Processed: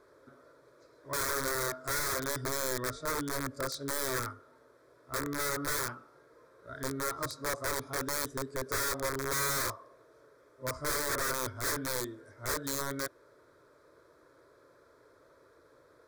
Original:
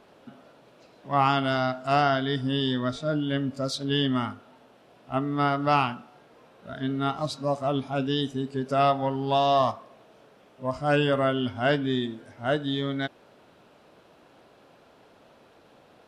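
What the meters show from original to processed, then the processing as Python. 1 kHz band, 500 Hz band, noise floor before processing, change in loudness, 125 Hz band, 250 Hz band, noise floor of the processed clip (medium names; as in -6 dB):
-11.0 dB, -10.0 dB, -57 dBFS, -7.0 dB, -13.0 dB, -14.0 dB, -63 dBFS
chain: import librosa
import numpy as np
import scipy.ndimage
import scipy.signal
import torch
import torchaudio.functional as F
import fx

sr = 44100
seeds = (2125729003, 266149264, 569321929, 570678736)

y = fx.cheby_harmonics(x, sr, harmonics=(2,), levels_db=(-31,), full_scale_db=-10.0)
y = (np.mod(10.0 ** (21.5 / 20.0) * y + 1.0, 2.0) - 1.0) / 10.0 ** (21.5 / 20.0)
y = fx.fixed_phaser(y, sr, hz=770.0, stages=6)
y = y * librosa.db_to_amplitude(-2.5)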